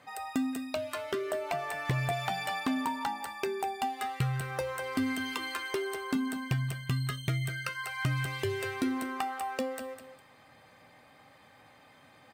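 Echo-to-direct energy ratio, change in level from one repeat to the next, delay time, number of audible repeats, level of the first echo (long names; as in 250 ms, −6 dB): −9.0 dB, −11.5 dB, 204 ms, 2, −9.5 dB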